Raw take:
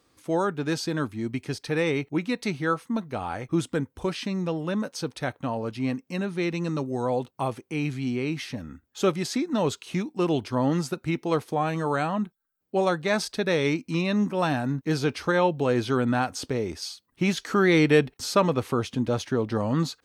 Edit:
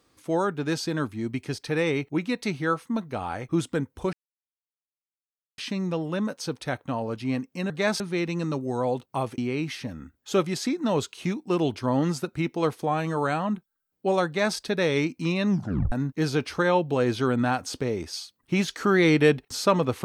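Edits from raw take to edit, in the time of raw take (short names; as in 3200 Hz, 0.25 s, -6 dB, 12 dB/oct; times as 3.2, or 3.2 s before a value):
4.13 insert silence 1.45 s
7.63–8.07 cut
12.96–13.26 copy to 6.25
14.19 tape stop 0.42 s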